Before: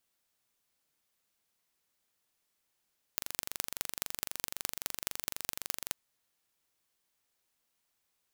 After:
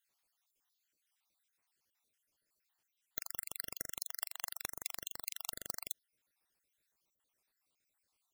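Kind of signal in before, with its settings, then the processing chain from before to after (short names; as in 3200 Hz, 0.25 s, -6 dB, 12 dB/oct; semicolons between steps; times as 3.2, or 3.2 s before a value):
pulse train 23.8/s, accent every 5, -3.5 dBFS 2.75 s
random spectral dropouts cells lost 59%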